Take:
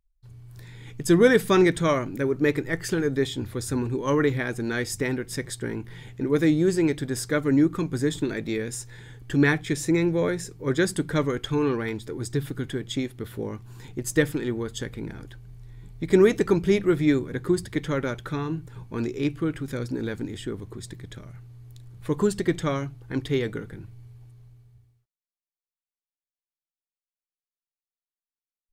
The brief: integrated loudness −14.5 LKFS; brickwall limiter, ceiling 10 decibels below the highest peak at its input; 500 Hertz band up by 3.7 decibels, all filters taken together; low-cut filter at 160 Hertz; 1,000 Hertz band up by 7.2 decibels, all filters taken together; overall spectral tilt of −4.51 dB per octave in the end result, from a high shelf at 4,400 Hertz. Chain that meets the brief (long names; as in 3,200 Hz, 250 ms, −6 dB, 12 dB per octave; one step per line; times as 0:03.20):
high-pass filter 160 Hz
parametric band 500 Hz +3.5 dB
parametric band 1,000 Hz +7.5 dB
high-shelf EQ 4,400 Hz +8 dB
level +10.5 dB
brickwall limiter −1.5 dBFS